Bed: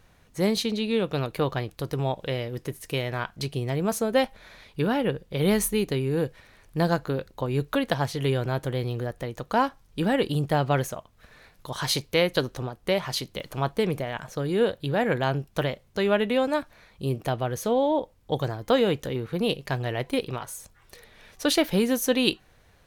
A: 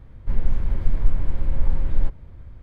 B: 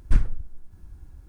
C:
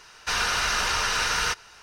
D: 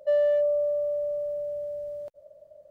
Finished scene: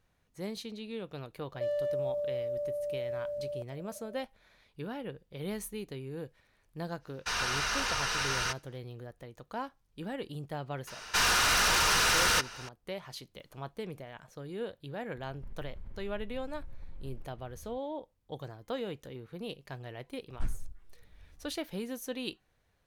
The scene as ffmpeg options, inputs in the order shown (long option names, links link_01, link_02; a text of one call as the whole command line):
ffmpeg -i bed.wav -i cue0.wav -i cue1.wav -i cue2.wav -i cue3.wav -filter_complex "[3:a]asplit=2[link_01][link_02];[0:a]volume=-15dB[link_03];[4:a]acrossover=split=360|3000[link_04][link_05][link_06];[link_05]acompressor=threshold=-34dB:ratio=6:attack=3.2:release=140:knee=2.83:detection=peak[link_07];[link_04][link_07][link_06]amix=inputs=3:normalize=0[link_08];[link_01]agate=range=-33dB:threshold=-42dB:ratio=3:release=100:detection=peak[link_09];[link_02]aeval=exprs='0.237*sin(PI/2*3.16*val(0)/0.237)':channel_layout=same[link_10];[1:a]acompressor=threshold=-28dB:ratio=6:attack=3.2:release=140:knee=1:detection=peak[link_11];[2:a]asplit=2[link_12][link_13];[link_13]adelay=11.7,afreqshift=-1.8[link_14];[link_12][link_14]amix=inputs=2:normalize=1[link_15];[link_08]atrim=end=2.7,asetpts=PTS-STARTPTS,volume=-1dB,afade=type=in:duration=0.004:curve=hsin,afade=type=out:start_time=2.696:duration=0.004:curve=hsin,adelay=1540[link_16];[link_09]atrim=end=1.82,asetpts=PTS-STARTPTS,volume=-7dB,afade=type=in:duration=0.05,afade=type=out:start_time=1.77:duration=0.05,adelay=6990[link_17];[link_10]atrim=end=1.82,asetpts=PTS-STARTPTS,volume=-10dB,afade=type=in:duration=0.004:curve=hsin,afade=type=out:start_time=1.816:duration=0.004:curve=hsin,adelay=10870[link_18];[link_11]atrim=end=2.62,asetpts=PTS-STARTPTS,volume=-11.5dB,afade=type=in:duration=0.004:curve=hsin,afade=type=out:start_time=2.616:duration=0.004:curve=hsin,adelay=15160[link_19];[link_15]atrim=end=1.28,asetpts=PTS-STARTPTS,volume=-10dB,afade=type=in:duration=0.004:curve=hsin,afade=type=out:start_time=1.276:duration=0.004:curve=hsin,adelay=20290[link_20];[link_03][link_16][link_17][link_18][link_19][link_20]amix=inputs=6:normalize=0" out.wav